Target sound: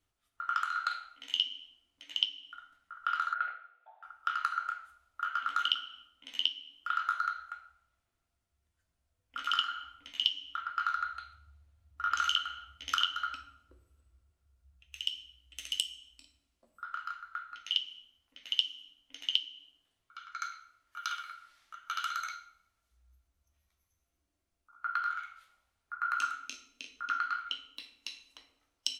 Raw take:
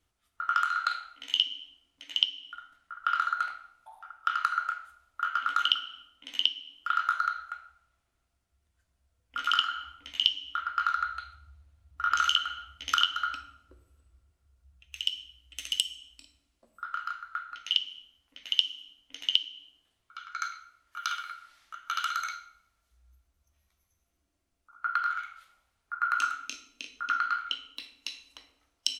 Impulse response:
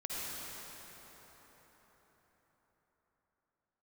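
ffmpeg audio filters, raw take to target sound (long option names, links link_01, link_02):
-filter_complex "[0:a]flanger=delay=7.2:depth=5.8:regen=-67:speed=0.1:shape=sinusoidal,asettb=1/sr,asplit=3[link_01][link_02][link_03];[link_01]atrim=end=3.344[link_04];[link_02]atrim=start=3.34:end=4.03,asetpts=PTS-STARTPTS,afade=type=in:duration=0.004:curve=qsin,afade=type=out:start_time=0.686:duration=0.004:curve=qsin,highpass=frequency=370:width=0.5412,highpass=frequency=370:width=1.3066,equalizer=frequency=480:width_type=q:width=4:gain=9,equalizer=frequency=680:width_type=q:width=4:gain=4,equalizer=frequency=990:width_type=q:width=4:gain=-10,equalizer=frequency=1600:width_type=q:width=4:gain=6,lowpass=frequency=3000:width=0.5412,lowpass=frequency=3000:width=1.3066[link_05];[link_03]atrim=start=4.026[link_06];[link_04][link_05]acrossfade=duration=0.004:curve1=hsin:curve2=qsin[link_07];[link_07][link_06]acrossfade=duration=0.004:curve1=qsin:curve2=hsin"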